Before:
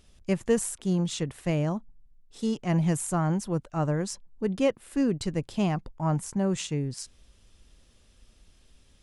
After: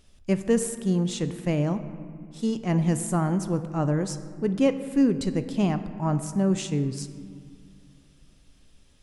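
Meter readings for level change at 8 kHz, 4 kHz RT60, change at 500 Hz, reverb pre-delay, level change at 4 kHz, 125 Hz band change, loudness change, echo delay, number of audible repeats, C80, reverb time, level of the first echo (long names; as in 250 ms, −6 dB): 0.0 dB, 1.2 s, +2.0 dB, 3 ms, 0.0 dB, +2.0 dB, +2.5 dB, no echo audible, no echo audible, 12.5 dB, 2.1 s, no echo audible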